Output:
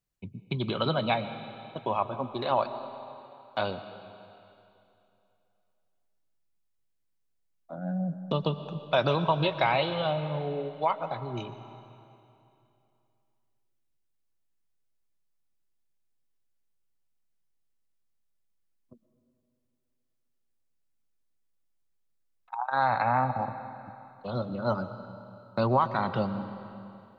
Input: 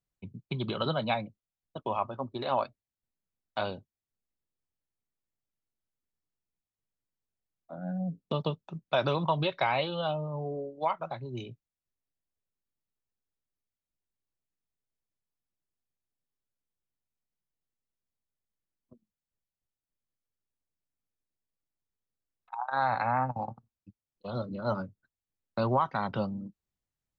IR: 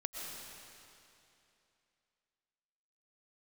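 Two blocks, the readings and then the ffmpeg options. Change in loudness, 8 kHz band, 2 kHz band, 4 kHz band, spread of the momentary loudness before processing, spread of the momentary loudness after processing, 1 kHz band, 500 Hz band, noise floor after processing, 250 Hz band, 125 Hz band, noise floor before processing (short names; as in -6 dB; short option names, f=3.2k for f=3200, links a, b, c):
+2.5 dB, n/a, +3.0 dB, +3.0 dB, 14 LU, 20 LU, +3.0 dB, +3.0 dB, -74 dBFS, +3.0 dB, +3.0 dB, under -85 dBFS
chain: -filter_complex "[0:a]asplit=2[a][b];[1:a]atrim=start_sample=2205[c];[b][c]afir=irnorm=-1:irlink=0,volume=-6.5dB[d];[a][d]amix=inputs=2:normalize=0"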